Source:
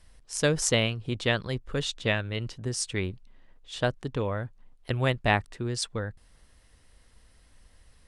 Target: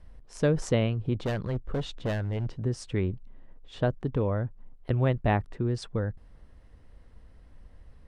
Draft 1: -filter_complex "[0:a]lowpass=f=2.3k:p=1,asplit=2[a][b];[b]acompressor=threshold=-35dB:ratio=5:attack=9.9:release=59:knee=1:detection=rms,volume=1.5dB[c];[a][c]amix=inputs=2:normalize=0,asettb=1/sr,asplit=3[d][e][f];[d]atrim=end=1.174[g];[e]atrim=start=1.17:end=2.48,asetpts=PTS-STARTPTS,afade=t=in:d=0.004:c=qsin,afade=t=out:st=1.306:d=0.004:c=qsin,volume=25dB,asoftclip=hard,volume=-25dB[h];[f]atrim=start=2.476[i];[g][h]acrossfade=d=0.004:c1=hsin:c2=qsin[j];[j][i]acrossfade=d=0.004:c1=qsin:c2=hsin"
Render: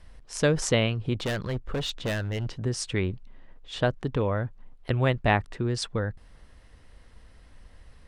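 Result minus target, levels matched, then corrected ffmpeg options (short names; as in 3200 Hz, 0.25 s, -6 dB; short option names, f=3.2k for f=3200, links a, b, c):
2000 Hz band +6.0 dB
-filter_complex "[0:a]lowpass=f=600:p=1,asplit=2[a][b];[b]acompressor=threshold=-35dB:ratio=5:attack=9.9:release=59:knee=1:detection=rms,volume=1.5dB[c];[a][c]amix=inputs=2:normalize=0,asettb=1/sr,asplit=3[d][e][f];[d]atrim=end=1.174[g];[e]atrim=start=1.17:end=2.48,asetpts=PTS-STARTPTS,afade=t=in:d=0.004:c=qsin,afade=t=out:st=1.306:d=0.004:c=qsin,volume=25dB,asoftclip=hard,volume=-25dB[h];[f]atrim=start=2.476[i];[g][h]acrossfade=d=0.004:c1=hsin:c2=qsin[j];[j][i]acrossfade=d=0.004:c1=qsin:c2=hsin"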